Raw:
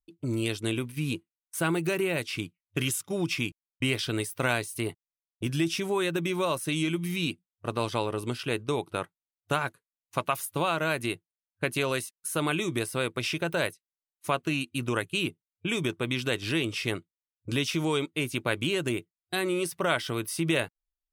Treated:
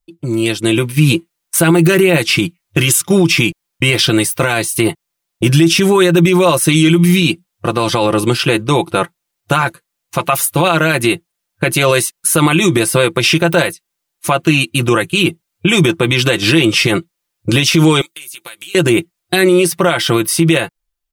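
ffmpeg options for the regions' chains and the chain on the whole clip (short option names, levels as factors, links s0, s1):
-filter_complex "[0:a]asettb=1/sr,asplit=3[s0][s1][s2];[s0]atrim=end=18.014[s3];[s1]atrim=start=18.01:end=18.75,asetpts=PTS-STARTPTS,afade=t=in:d=0.004:c=qsin,afade=t=out:st=0.736:d=0.004:c=qsin,aderivative,acompressor=threshold=0.00398:ratio=16:attack=3.2:release=140:knee=1:detection=peak[s4];[s2]atrim=start=18.746[s5];[s3][s4]acrossfade=d=0.004:c1=hsin:c2=qsin[s6];[s6][s5]acrossfade=d=0.004:c1=qsin:c2=hsin,aecho=1:1:5.8:0.62,dynaudnorm=f=120:g=13:m=3.76,alimiter=level_in=3.55:limit=0.891:release=50:level=0:latency=1,volume=0.891"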